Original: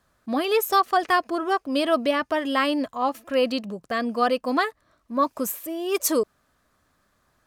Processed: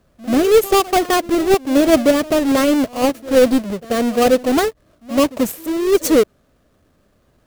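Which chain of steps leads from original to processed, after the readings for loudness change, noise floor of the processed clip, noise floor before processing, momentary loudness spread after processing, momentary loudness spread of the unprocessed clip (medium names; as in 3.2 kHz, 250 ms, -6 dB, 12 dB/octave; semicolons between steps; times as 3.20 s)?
+8.0 dB, -59 dBFS, -68 dBFS, 7 LU, 8 LU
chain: square wave that keeps the level; resonant low shelf 710 Hz +6.5 dB, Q 1.5; pre-echo 87 ms -19 dB; trim -1 dB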